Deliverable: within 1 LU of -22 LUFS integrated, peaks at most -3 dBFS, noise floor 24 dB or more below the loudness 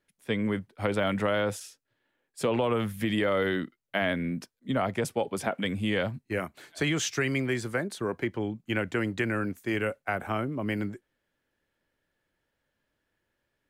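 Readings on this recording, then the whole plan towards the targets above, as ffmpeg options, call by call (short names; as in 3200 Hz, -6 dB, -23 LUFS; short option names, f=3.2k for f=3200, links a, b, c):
loudness -30.0 LUFS; peak -13.0 dBFS; loudness target -22.0 LUFS
-> -af "volume=8dB"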